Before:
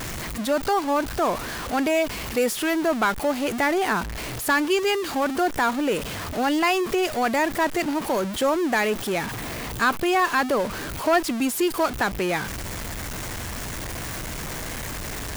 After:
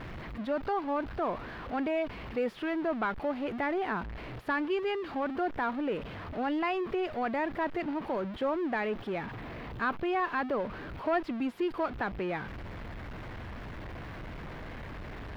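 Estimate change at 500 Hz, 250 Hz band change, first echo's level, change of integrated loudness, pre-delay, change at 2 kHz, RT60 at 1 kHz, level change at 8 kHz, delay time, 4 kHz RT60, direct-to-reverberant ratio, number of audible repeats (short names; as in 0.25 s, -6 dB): -8.5 dB, -8.0 dB, none, -9.5 dB, none, -11.0 dB, none, under -30 dB, none, none, none, none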